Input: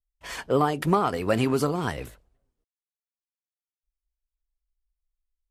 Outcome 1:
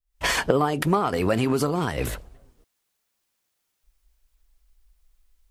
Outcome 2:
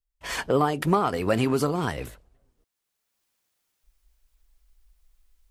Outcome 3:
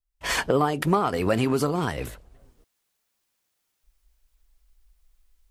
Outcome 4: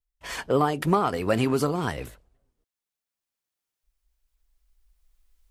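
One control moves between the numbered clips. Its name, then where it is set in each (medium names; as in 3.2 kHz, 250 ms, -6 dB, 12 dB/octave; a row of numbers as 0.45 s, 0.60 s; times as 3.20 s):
recorder AGC, rising by: 90 dB/s, 15 dB/s, 37 dB/s, 5.4 dB/s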